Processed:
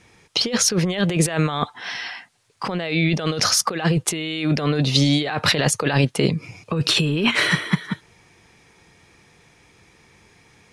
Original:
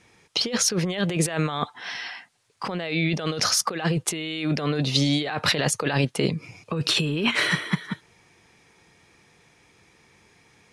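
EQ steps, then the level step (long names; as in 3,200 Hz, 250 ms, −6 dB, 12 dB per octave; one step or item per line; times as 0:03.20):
low-shelf EQ 88 Hz +6.5 dB
+3.5 dB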